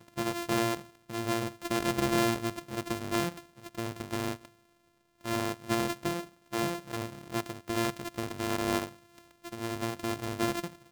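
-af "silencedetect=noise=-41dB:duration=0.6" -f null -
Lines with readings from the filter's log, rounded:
silence_start: 4.46
silence_end: 5.25 | silence_duration: 0.79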